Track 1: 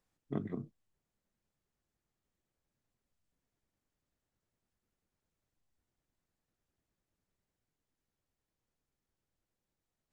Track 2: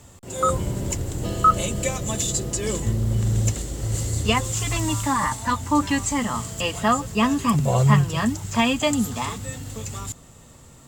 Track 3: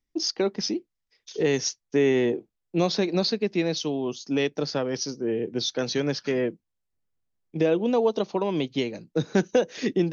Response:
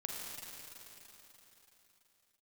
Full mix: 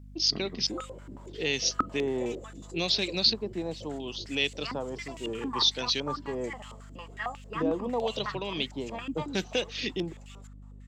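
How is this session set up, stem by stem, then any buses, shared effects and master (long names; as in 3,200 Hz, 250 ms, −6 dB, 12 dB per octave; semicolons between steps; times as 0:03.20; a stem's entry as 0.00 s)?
−3.0 dB, 0.00 s, no send, no processing
−6.5 dB, 0.35 s, no send, band-pass on a step sequencer 11 Hz 270–2,700 Hz
−10.0 dB, 0.00 s, no send, auto-filter low-pass square 0.75 Hz 970–2,500 Hz; high shelf with overshoot 2,900 Hz +13.5 dB, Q 1.5; low-pass that shuts in the quiet parts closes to 2,500 Hz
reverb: not used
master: high-shelf EQ 2,700 Hz +9 dB; mains hum 50 Hz, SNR 15 dB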